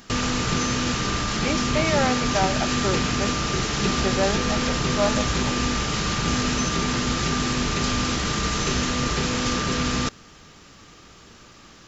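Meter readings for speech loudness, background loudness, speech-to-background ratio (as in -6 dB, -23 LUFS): -28.0 LUFS, -23.5 LUFS, -4.5 dB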